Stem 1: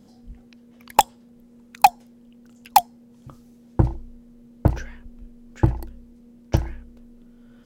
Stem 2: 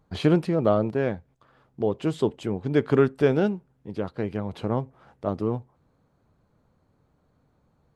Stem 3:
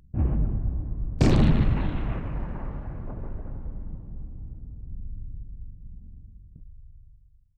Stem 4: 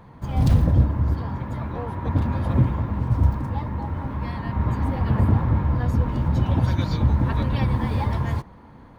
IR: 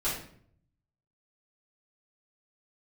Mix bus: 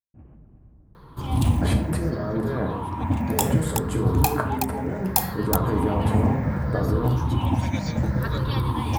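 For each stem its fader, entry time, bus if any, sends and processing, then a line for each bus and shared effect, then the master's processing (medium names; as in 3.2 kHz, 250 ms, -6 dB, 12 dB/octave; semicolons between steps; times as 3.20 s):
-14.0 dB, 2.40 s, send -11 dB, echo send -3.5 dB, treble shelf 5.2 kHz +10 dB
+1.0 dB, 1.50 s, send -7 dB, no echo send, high-order bell 4 kHz -14 dB; compressor with a negative ratio -32 dBFS, ratio -1
-18.5 dB, 0.00 s, no send, echo send -12 dB, compression 2.5:1, threshold -22 dBFS, peak gain reduction 6 dB
-1.5 dB, 0.95 s, no send, no echo send, drifting ripple filter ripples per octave 0.6, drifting -0.67 Hz, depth 11 dB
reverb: on, RT60 0.60 s, pre-delay 3 ms
echo: delay 372 ms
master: treble shelf 5.3 kHz +8 dB; expander -50 dBFS; bass shelf 66 Hz -10.5 dB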